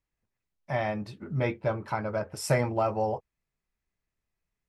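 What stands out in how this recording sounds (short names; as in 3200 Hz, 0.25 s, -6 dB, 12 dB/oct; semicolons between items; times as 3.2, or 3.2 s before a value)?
noise floor -87 dBFS; spectral tilt -6.0 dB/oct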